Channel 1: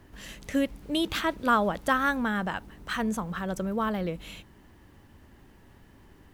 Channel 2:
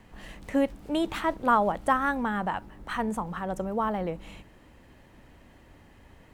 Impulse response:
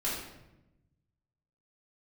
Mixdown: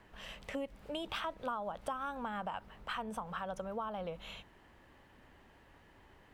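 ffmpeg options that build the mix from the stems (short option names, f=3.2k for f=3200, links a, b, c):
-filter_complex "[0:a]acrossover=split=420 4100:gain=0.0891 1 0.178[a][b][c];[a][b][c]amix=inputs=3:normalize=0,volume=-2dB[d];[1:a]volume=-10dB,asplit=2[e][f];[f]apad=whole_len=279295[g];[d][g]sidechaincompress=threshold=-41dB:ratio=8:attack=16:release=136[h];[h][e]amix=inputs=2:normalize=0,acompressor=threshold=-36dB:ratio=4"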